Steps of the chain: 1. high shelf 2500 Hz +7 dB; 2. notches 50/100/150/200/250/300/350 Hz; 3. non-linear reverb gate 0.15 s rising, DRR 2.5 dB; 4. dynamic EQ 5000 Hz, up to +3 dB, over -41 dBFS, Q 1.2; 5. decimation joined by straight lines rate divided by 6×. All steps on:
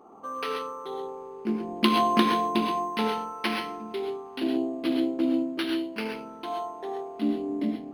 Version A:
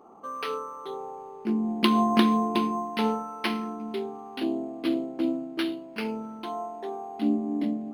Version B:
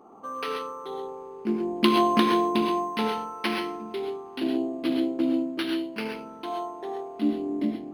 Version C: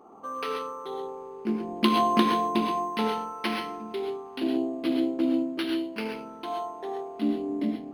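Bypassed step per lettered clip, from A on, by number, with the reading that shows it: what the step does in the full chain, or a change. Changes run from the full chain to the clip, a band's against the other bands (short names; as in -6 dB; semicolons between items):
3, momentary loudness spread change +1 LU; 2, 500 Hz band +2.0 dB; 4, 2 kHz band -2.0 dB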